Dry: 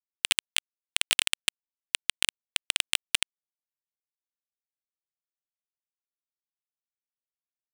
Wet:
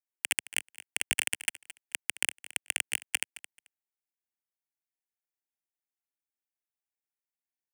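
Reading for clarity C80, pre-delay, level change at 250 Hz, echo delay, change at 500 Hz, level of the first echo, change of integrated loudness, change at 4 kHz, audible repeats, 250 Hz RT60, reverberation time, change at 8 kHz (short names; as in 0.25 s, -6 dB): none, none, -2.0 dB, 0.218 s, -4.0 dB, -17.0 dB, -4.5 dB, -9.0 dB, 2, none, none, -2.0 dB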